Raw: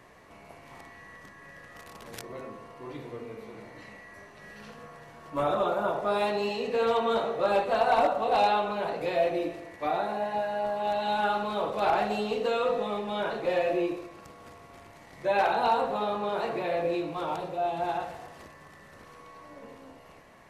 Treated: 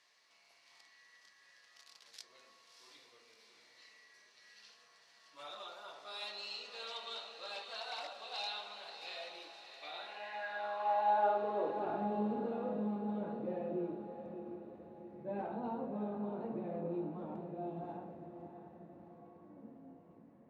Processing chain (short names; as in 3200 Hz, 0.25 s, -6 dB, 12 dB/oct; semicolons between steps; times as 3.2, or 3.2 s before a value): band-pass sweep 4700 Hz -> 210 Hz, 9.76–12.07; diffused feedback echo 0.66 s, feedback 50%, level -9 dB; flange 0.5 Hz, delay 6.6 ms, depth 4.4 ms, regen -74%; 17.56–17.97 high shelf 3700 Hz +6 dB; attack slew limiter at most 230 dB/s; gain +4.5 dB